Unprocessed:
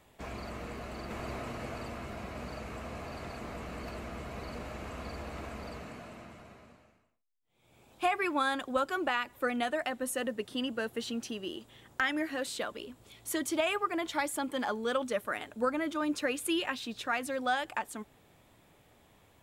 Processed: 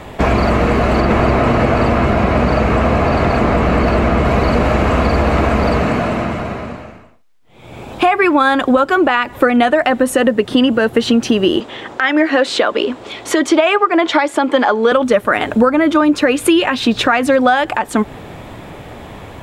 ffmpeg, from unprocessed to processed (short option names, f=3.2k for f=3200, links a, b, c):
-filter_complex "[0:a]asettb=1/sr,asplit=3[a][b][c];[a]atrim=end=1.004[d];[b]atrim=start=1:end=4.25,asetpts=PTS-STARTPTS,afade=t=in:d=0.004:c=qsin,afade=t=out:st=3.246:d=0.004:c=qsin,highshelf=f=5.4k:g=-5[e];[c]atrim=start=4.246[f];[d][e]acrossfade=d=0.004:c1=hsin:c2=qsin[g];[g][f]acrossfade=d=0.004:c1=qsin:c2=hsin,asettb=1/sr,asplit=3[h][i][j];[h]atrim=end=11.604[k];[i]atrim=start=11.6:end=14.92,asetpts=PTS-STARTPTS,afade=t=in:d=0.004:c=qsin,afade=t=out:st=3.316:d=0.004:c=qsin,acrossover=split=250 7500:gain=0.126 1 0.158[l][m][n];[l][m][n]amix=inputs=3:normalize=0[o];[j]atrim=start=14.916[p];[k][o]acrossfade=d=0.004:c1=hsin:c2=qsin[q];[q][p]acrossfade=d=0.004:c1=qsin:c2=hsin,lowpass=f=2k:p=1,acompressor=threshold=-40dB:ratio=6,alimiter=level_in=32dB:limit=-1dB:release=50:level=0:latency=1,volume=-1dB"